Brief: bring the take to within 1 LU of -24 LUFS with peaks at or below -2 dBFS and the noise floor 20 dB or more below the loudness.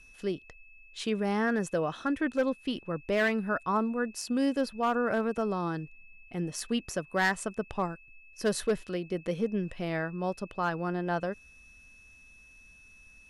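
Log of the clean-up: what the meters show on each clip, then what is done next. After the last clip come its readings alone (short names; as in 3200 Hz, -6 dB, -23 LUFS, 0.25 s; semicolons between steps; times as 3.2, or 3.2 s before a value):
clipped 0.4%; flat tops at -20.0 dBFS; steady tone 2600 Hz; tone level -54 dBFS; loudness -31.0 LUFS; peak -20.0 dBFS; loudness target -24.0 LUFS
-> clip repair -20 dBFS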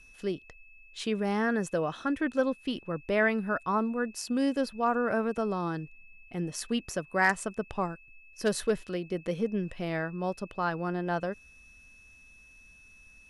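clipped 0.0%; steady tone 2600 Hz; tone level -54 dBFS
-> notch 2600 Hz, Q 30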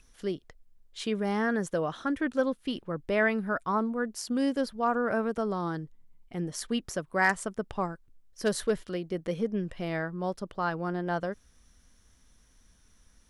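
steady tone none; loudness -31.0 LUFS; peak -11.0 dBFS; loudness target -24.0 LUFS
-> gain +7 dB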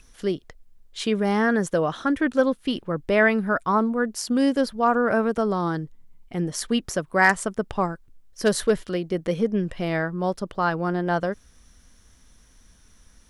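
loudness -24.0 LUFS; peak -4.0 dBFS; noise floor -55 dBFS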